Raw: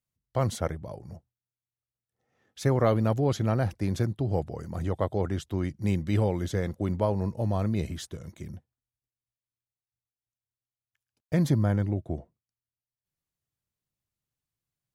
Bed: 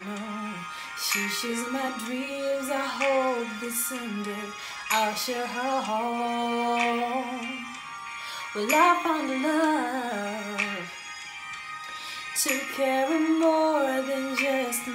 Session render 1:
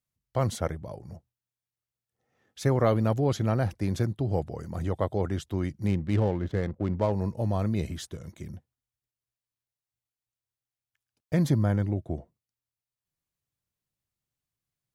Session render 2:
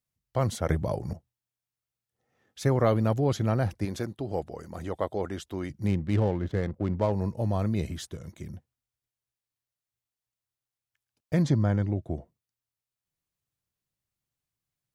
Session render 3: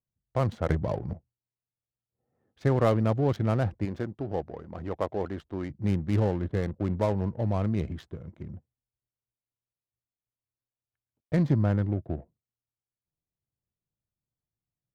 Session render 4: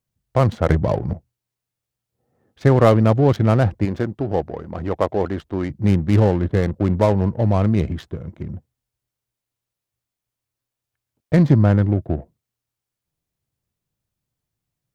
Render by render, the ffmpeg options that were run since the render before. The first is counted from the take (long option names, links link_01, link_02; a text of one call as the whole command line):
ffmpeg -i in.wav -filter_complex "[0:a]asettb=1/sr,asplit=3[link_01][link_02][link_03];[link_01]atrim=end=5.874[link_04];[link_02]atrim=start=5.87:end=7.12,asetpts=PTS-STARTPTS,afade=type=in:duration=0.004:curve=qsin,afade=type=out:start_time=1.246:duration=0.004:curve=qsin,adynamicsmooth=sensitivity=7.5:basefreq=950[link_05];[link_03]atrim=start=7.116[link_06];[link_04][link_05]acrossfade=duration=0.004:curve1=hsin:curve2=qsin[link_07];[link_07][link_06]acrossfade=duration=0.004:curve1=qsin:curve2=hsin" out.wav
ffmpeg -i in.wav -filter_complex "[0:a]asettb=1/sr,asplit=3[link_01][link_02][link_03];[link_01]atrim=end=3.854[link_04];[link_02]atrim=start=3.85:end=5.7,asetpts=PTS-STARTPTS,afade=type=in:duration=0.004:curve=qsin,afade=type=out:start_time=1.846:duration=0.004:curve=qsin,equalizer=frequency=110:width_type=o:width=1.7:gain=-10[link_05];[link_03]atrim=start=5.696[link_06];[link_04][link_05]acrossfade=duration=0.004:curve1=hsin:curve2=qsin[link_07];[link_07][link_06]acrossfade=duration=0.004:curve1=qsin:curve2=hsin,asettb=1/sr,asplit=3[link_08][link_09][link_10];[link_08]atrim=end=11.424[link_11];[link_09]atrim=start=11.42:end=12.03,asetpts=PTS-STARTPTS,afade=type=in:duration=0.004:curve=qsin,afade=type=out:start_time=0.606:duration=0.004:curve=qsin,lowpass=frequency=7700:width=0.5412,lowpass=frequency=7700:width=1.3066[link_12];[link_10]atrim=start=12.026[link_13];[link_11][link_12]acrossfade=duration=0.004:curve1=hsin:curve2=qsin[link_14];[link_14][link_13]acrossfade=duration=0.004:curve1=qsin:curve2=hsin,asplit=3[link_15][link_16][link_17];[link_15]atrim=end=0.692[link_18];[link_16]atrim=start=0.688:end=1.132,asetpts=PTS-STARTPTS,volume=10dB[link_19];[link_17]atrim=start=1.128[link_20];[link_18][link_19]acrossfade=duration=0.004:curve1=hsin:curve2=hsin[link_21];[link_21][link_20]acrossfade=duration=0.004:curve1=hsin:curve2=hsin" out.wav
ffmpeg -i in.wav -af "adynamicsmooth=sensitivity=7.5:basefreq=830" out.wav
ffmpeg -i in.wav -af "volume=10dB,alimiter=limit=-1dB:level=0:latency=1" out.wav